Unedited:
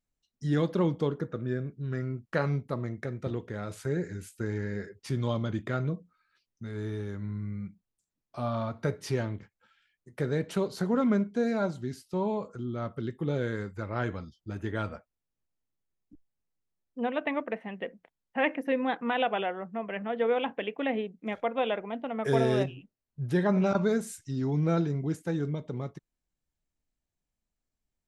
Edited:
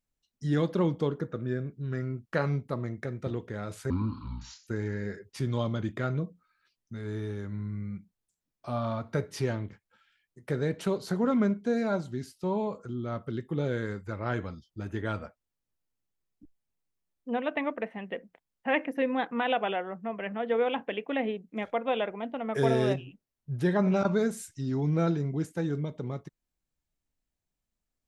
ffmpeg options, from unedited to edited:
-filter_complex "[0:a]asplit=3[s0][s1][s2];[s0]atrim=end=3.904[s3];[s1]atrim=start=3.9:end=4.37,asetpts=PTS-STARTPTS,asetrate=26901,aresample=44100[s4];[s2]atrim=start=4.366[s5];[s3][s4]acrossfade=d=0.004:c1=hsin:c2=hsin[s6];[s6][s5]acrossfade=d=0.004:c1=hsin:c2=hsin"

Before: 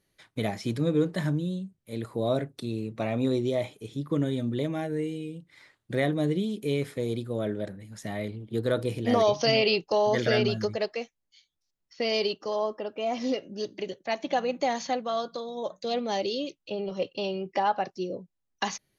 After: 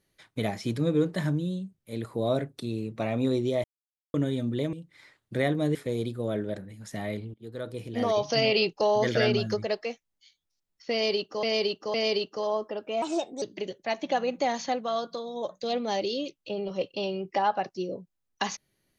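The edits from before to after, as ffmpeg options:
-filter_complex "[0:a]asplit=10[s0][s1][s2][s3][s4][s5][s6][s7][s8][s9];[s0]atrim=end=3.64,asetpts=PTS-STARTPTS,afade=t=out:st=3.636:d=0.004:c=hsin[s10];[s1]atrim=start=3.64:end=4.14,asetpts=PTS-STARTPTS,volume=0[s11];[s2]atrim=start=4.14:end=4.732,asetpts=PTS-STARTPTS,afade=t=in:d=0.004:c=hsin[s12];[s3]atrim=start=5.308:end=6.332[s13];[s4]atrim=start=6.858:end=8.45,asetpts=PTS-STARTPTS,afade=t=out:st=1.588:d=0.004:c=hsin:silence=0.133352[s14];[s5]atrim=start=8.45:end=12.542,asetpts=PTS-STARTPTS,afade=t=in:d=1.26:silence=0.133352[s15];[s6]atrim=start=12.028:end=12.542[s16];[s7]atrim=start=12.028:end=13.114[s17];[s8]atrim=start=13.11:end=13.63,asetpts=PTS-STARTPTS,asetrate=57330,aresample=44100[s18];[s9]atrim=start=13.626[s19];[s10][s11][s12]concat=n=3:v=0:a=1[s20];[s20][s13]acrossfade=d=0.004:c1=hsin:c2=hsin[s21];[s14][s15]concat=n=2:v=0:a=1[s22];[s21][s22]acrossfade=d=0.004:c1=hsin:c2=hsin[s23];[s23][s16]acrossfade=d=0.004:c1=hsin:c2=hsin[s24];[s24][s17]acrossfade=d=0.004:c1=hsin:c2=hsin[s25];[s25][s18]acrossfade=d=0.004:c1=hsin:c2=hsin[s26];[s26][s19]acrossfade=d=0.004:c1=hsin:c2=hsin"

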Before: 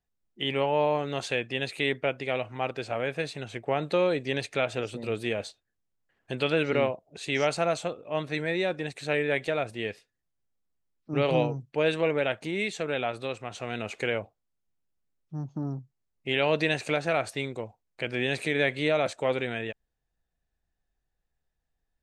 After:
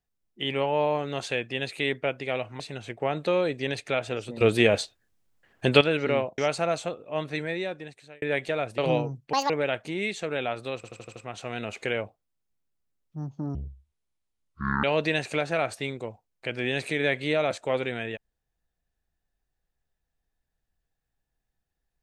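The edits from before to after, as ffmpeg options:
-filter_complex "[0:a]asplit=16[s0][s1][s2][s3][s4][s5][s6][s7][s8][s9][s10][s11][s12][s13][s14][s15];[s0]atrim=end=2.602[s16];[s1]atrim=start=3.258:end=5.072[s17];[s2]atrim=start=5.068:end=6.472,asetpts=PTS-STARTPTS,volume=3.16[s18];[s3]atrim=start=6.468:end=7.042[s19];[s4]atrim=start=7.368:end=9.21,asetpts=PTS-STARTPTS,afade=t=out:st=0.952:d=0.89[s20];[s5]atrim=start=9.21:end=9.772,asetpts=PTS-STARTPTS,afade=t=in:d=0.004:c=hsin[s21];[s6]atrim=start=11.228:end=11.784[s22];[s7]atrim=start=11.78:end=12.07,asetpts=PTS-STARTPTS,asetrate=76293,aresample=44100,atrim=end_sample=7392,asetpts=PTS-STARTPTS[s23];[s8]atrim=start=12.066:end=13.412[s24];[s9]atrim=start=13.328:end=13.412[s25];[s10]atrim=start=13.328:end=13.412[s26];[s11]atrim=start=13.328:end=13.412[s27];[s12]atrim=start=13.328:end=13.412[s28];[s13]atrim=start=13.328:end=15.724[s29];[s14]atrim=start=15.72:end=16.39,asetpts=PTS-STARTPTS,asetrate=22932,aresample=44100,atrim=end_sample=56821,asetpts=PTS-STARTPTS[s30];[s15]atrim=start=16.386[s31];[s16][s17]acrossfade=d=0.004:c1=hsin:c2=hsin[s32];[s32][s18]acrossfade=d=0.004:c1=hsin:c2=hsin[s33];[s33][s19]acrossfade=d=0.004:c1=hsin:c2=hsin[s34];[s20][s21]concat=n=2:v=0:a=1[s35];[s34][s35]acrossfade=d=0.004:c1=hsin:c2=hsin[s36];[s36][s22]acrossfade=d=0.004:c1=hsin:c2=hsin[s37];[s37][s23]acrossfade=d=0.004:c1=hsin:c2=hsin[s38];[s38][s24]acrossfade=d=0.004:c1=hsin:c2=hsin[s39];[s39][s25]acrossfade=d=0.004:c1=hsin:c2=hsin[s40];[s40][s26]acrossfade=d=0.004:c1=hsin:c2=hsin[s41];[s41][s27]acrossfade=d=0.004:c1=hsin:c2=hsin[s42];[s42][s28]acrossfade=d=0.004:c1=hsin:c2=hsin[s43];[s43][s29]acrossfade=d=0.004:c1=hsin:c2=hsin[s44];[s44][s30]acrossfade=d=0.004:c1=hsin:c2=hsin[s45];[s45][s31]acrossfade=d=0.004:c1=hsin:c2=hsin"

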